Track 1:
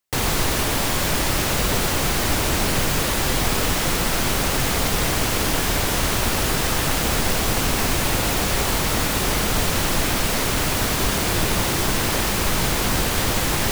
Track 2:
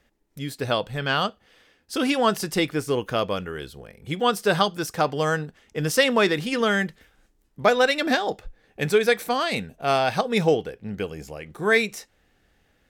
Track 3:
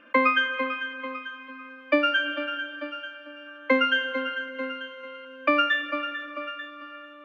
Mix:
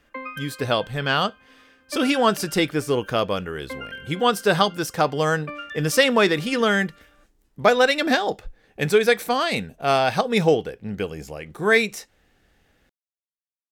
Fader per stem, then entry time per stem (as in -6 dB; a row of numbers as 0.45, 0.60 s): off, +2.0 dB, -13.5 dB; off, 0.00 s, 0.00 s